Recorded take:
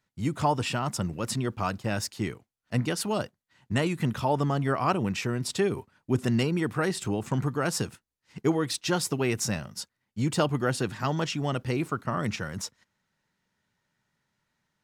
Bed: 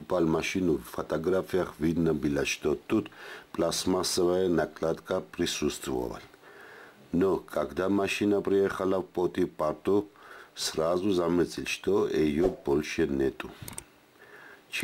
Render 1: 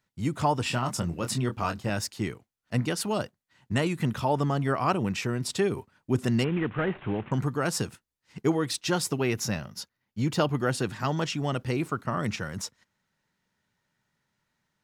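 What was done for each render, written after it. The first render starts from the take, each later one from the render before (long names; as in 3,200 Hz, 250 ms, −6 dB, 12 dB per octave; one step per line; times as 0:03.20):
0:00.63–0:01.90: double-tracking delay 24 ms −7 dB
0:06.44–0:07.32: variable-slope delta modulation 16 kbit/s
0:09.18–0:10.58: parametric band 8,300 Hz −12 dB 0.27 octaves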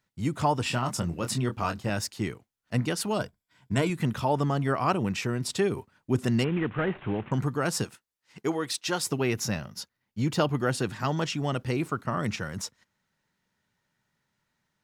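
0:03.19–0:03.90: EQ curve with evenly spaced ripples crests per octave 1.7, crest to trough 8 dB
0:07.84–0:09.06: low-shelf EQ 230 Hz −12 dB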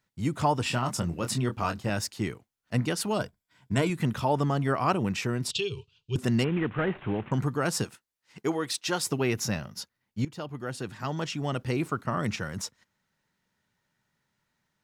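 0:05.51–0:06.16: drawn EQ curve 140 Hz 0 dB, 260 Hz −28 dB, 430 Hz −2 dB, 620 Hz −29 dB, 1,000 Hz −13 dB, 1,900 Hz −20 dB, 2,800 Hz +13 dB, 4,900 Hz +4 dB, 7,300 Hz −3 dB, 12,000 Hz −28 dB
0:10.25–0:11.78: fade in, from −17 dB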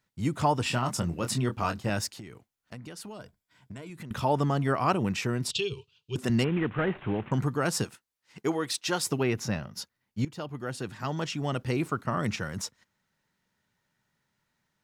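0:02.18–0:04.11: downward compressor 8 to 1, threshold −39 dBFS
0:05.73–0:06.30: high-pass filter 190 Hz 6 dB per octave
0:09.23–0:09.74: high-shelf EQ 4,900 Hz −10 dB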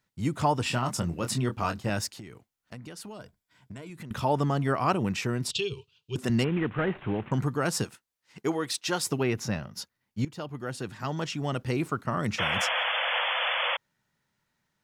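0:12.38–0:13.77: sound drawn into the spectrogram noise 480–3,500 Hz −28 dBFS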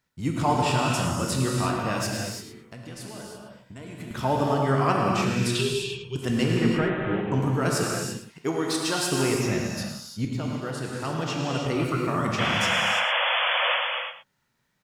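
on a send: single-tap delay 109 ms −10.5 dB
on the sum: reverb whose tail is shaped and stops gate 370 ms flat, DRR −1.5 dB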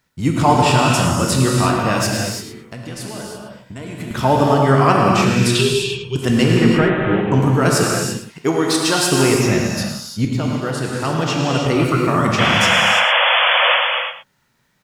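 level +9.5 dB
brickwall limiter −1 dBFS, peak gain reduction 1.5 dB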